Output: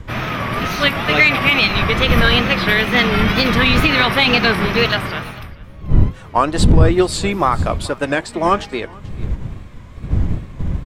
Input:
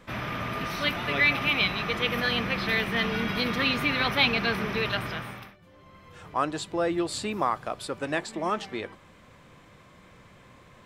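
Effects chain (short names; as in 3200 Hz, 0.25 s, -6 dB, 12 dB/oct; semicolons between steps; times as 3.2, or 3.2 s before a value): wind noise 100 Hz -31 dBFS; in parallel at -10.5 dB: soft clip -16.5 dBFS, distortion -13 dB; on the sum: wow and flutter 110 cents; on a send: echo 0.436 s -20 dB; on the sum: maximiser +13.5 dB; upward expander 1.5:1, over -24 dBFS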